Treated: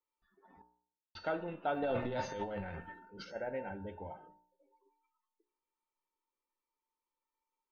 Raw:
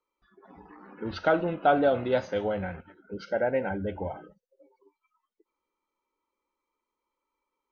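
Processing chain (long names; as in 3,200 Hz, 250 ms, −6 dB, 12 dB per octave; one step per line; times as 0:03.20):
0:01.82–0:03.36: transient designer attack −7 dB, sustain +12 dB
tuned comb filter 900 Hz, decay 0.36 s, mix 90%
0:00.62–0:01.15: silence
hum removal 60.09 Hz, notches 28
level +7 dB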